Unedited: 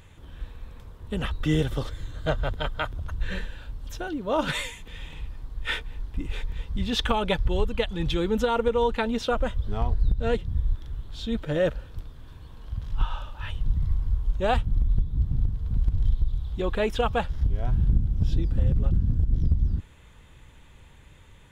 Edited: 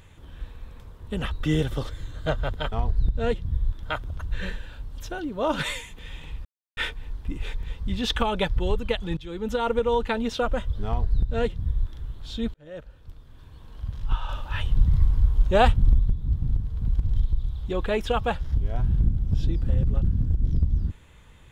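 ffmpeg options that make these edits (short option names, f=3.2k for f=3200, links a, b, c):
-filter_complex "[0:a]asplit=9[a][b][c][d][e][f][g][h][i];[a]atrim=end=2.722[j];[b]atrim=start=9.748:end=10.862[k];[c]atrim=start=2.718:end=5.34,asetpts=PTS-STARTPTS,afade=t=out:st=2.618:d=0.004:c=hsin[l];[d]atrim=start=5.34:end=5.66,asetpts=PTS-STARTPTS,volume=0[m];[e]atrim=start=5.66:end=8.06,asetpts=PTS-STARTPTS,afade=t=in:d=0.004:c=hsin,afade=t=out:st=2.396:d=0.004:c=hsin:silence=0.0891251[n];[f]atrim=start=8.06:end=11.43,asetpts=PTS-STARTPTS,afade=t=in:d=0.52:silence=0.0891251,afade=t=out:st=3.366:d=0.004:c=hsin[o];[g]atrim=start=11.43:end=13.182,asetpts=PTS-STARTPTS,afade=t=in:d=1.25[p];[h]atrim=start=13.178:end=14.892,asetpts=PTS-STARTPTS,volume=5.5dB[q];[i]atrim=start=14.888[r];[j][k]acrossfade=d=0.004:c1=hsin:c2=hsin[s];[l][m][n][o][p]concat=n=5:v=0:a=1[t];[s][t]acrossfade=d=0.004:c1=hsin:c2=hsin[u];[u][q]acrossfade=d=0.004:c1=hsin:c2=hsin[v];[v][r]acrossfade=d=0.004:c1=hsin:c2=hsin"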